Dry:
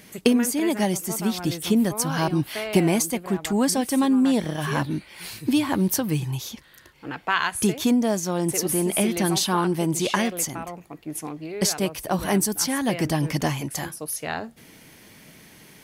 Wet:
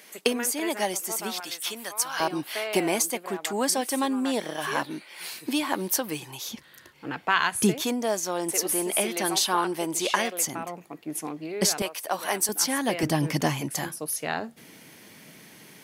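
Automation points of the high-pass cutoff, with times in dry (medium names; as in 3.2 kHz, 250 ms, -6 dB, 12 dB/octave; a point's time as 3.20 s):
480 Hz
from 1.40 s 1 kHz
from 2.20 s 410 Hz
from 6.49 s 110 Hz
from 7.82 s 420 Hz
from 10.44 s 190 Hz
from 11.82 s 610 Hz
from 12.49 s 290 Hz
from 13.03 s 140 Hz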